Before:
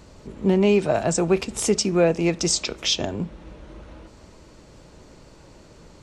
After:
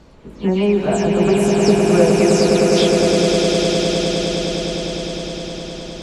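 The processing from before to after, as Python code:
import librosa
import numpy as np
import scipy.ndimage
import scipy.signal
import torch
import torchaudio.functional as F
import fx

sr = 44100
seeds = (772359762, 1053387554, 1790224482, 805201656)

y = fx.spec_delay(x, sr, highs='early', ms=197)
y = fx.peak_eq(y, sr, hz=7900.0, db=-8.0, octaves=1.1)
y = fx.echo_swell(y, sr, ms=103, loudest=8, wet_db=-5.5)
y = y * 10.0 ** (2.0 / 20.0)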